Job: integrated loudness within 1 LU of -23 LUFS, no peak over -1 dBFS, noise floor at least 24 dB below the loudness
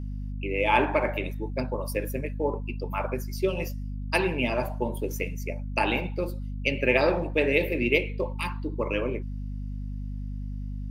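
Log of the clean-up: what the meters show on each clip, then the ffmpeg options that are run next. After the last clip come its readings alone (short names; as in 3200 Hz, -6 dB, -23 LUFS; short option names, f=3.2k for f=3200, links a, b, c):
hum 50 Hz; harmonics up to 250 Hz; hum level -31 dBFS; loudness -28.5 LUFS; peak -7.0 dBFS; loudness target -23.0 LUFS
-> -af "bandreject=f=50:t=h:w=4,bandreject=f=100:t=h:w=4,bandreject=f=150:t=h:w=4,bandreject=f=200:t=h:w=4,bandreject=f=250:t=h:w=4"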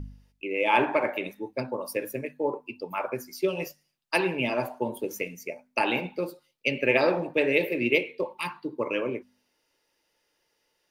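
hum none; loudness -28.0 LUFS; peak -7.0 dBFS; loudness target -23.0 LUFS
-> -af "volume=5dB"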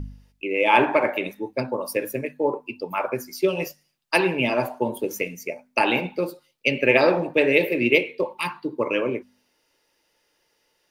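loudness -23.0 LUFS; peak -2.0 dBFS; noise floor -70 dBFS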